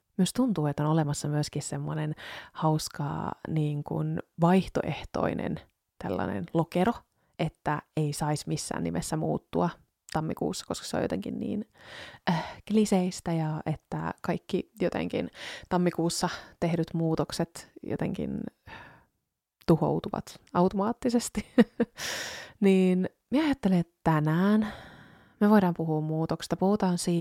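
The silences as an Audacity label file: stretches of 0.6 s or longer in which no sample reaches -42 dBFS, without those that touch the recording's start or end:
18.890000	19.610000	silence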